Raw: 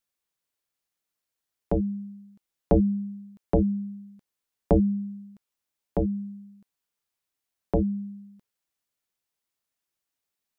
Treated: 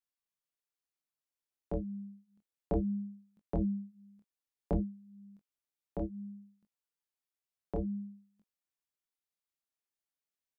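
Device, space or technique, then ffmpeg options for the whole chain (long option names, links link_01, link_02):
double-tracked vocal: -filter_complex "[0:a]asplit=2[link_01][link_02];[link_02]adelay=19,volume=-13.5dB[link_03];[link_01][link_03]amix=inputs=2:normalize=0,flanger=delay=22.5:depth=6:speed=0.6,volume=-8dB"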